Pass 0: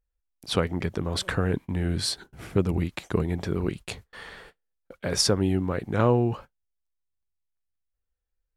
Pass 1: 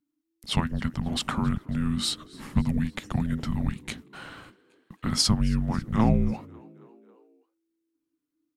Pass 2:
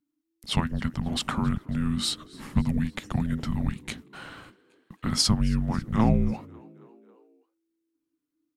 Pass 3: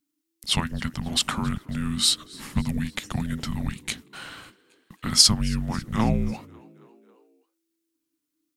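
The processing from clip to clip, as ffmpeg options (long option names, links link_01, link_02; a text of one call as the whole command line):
ffmpeg -i in.wav -filter_complex "[0:a]afreqshift=-330,asplit=5[link_01][link_02][link_03][link_04][link_05];[link_02]adelay=273,afreqshift=62,volume=-24dB[link_06];[link_03]adelay=546,afreqshift=124,volume=-28.9dB[link_07];[link_04]adelay=819,afreqshift=186,volume=-33.8dB[link_08];[link_05]adelay=1092,afreqshift=248,volume=-38.6dB[link_09];[link_01][link_06][link_07][link_08][link_09]amix=inputs=5:normalize=0" out.wav
ffmpeg -i in.wav -af anull out.wav
ffmpeg -i in.wav -af "highshelf=frequency=2100:gain=11.5,volume=-1.5dB" out.wav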